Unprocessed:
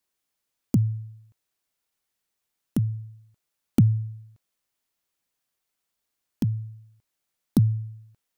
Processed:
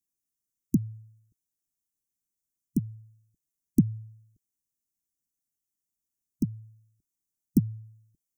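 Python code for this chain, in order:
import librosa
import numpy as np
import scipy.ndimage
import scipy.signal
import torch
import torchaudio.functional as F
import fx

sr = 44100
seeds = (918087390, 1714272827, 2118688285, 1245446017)

y = scipy.signal.sosfilt(scipy.signal.ellip(3, 1.0, 40, [340.0, 6100.0], 'bandstop', fs=sr, output='sos'), x)
y = fx.hpss(y, sr, part='harmonic', gain_db=-12)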